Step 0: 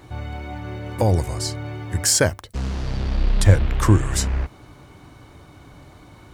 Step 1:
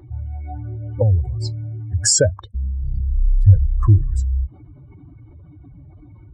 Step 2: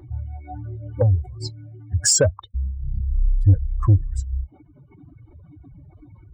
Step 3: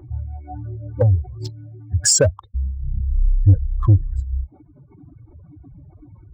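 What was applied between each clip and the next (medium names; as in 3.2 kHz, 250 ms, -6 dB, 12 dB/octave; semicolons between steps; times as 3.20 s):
spectral contrast enhancement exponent 2.6; trim +3 dB
reverb removal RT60 1.3 s; saturation -7 dBFS, distortion -16 dB
local Wiener filter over 15 samples; trim +2 dB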